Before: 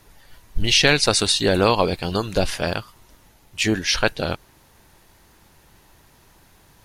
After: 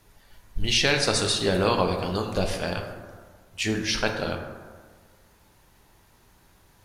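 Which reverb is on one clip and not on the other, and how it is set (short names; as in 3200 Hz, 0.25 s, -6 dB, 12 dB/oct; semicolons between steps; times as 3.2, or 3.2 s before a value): plate-style reverb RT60 1.6 s, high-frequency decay 0.4×, DRR 3 dB; gain -6.5 dB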